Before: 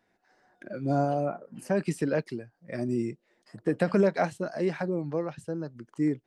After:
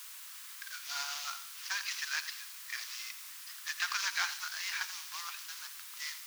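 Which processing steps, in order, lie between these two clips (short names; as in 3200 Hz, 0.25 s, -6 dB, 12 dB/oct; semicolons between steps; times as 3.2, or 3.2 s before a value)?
CVSD 32 kbps; tilt +4.5 dB/oct; on a send: thin delay 0.106 s, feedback 64%, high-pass 3100 Hz, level -13.5 dB; on the sum: requantised 8-bit, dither triangular; steep high-pass 1000 Hz 48 dB/oct; lo-fi delay 86 ms, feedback 35%, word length 10-bit, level -13.5 dB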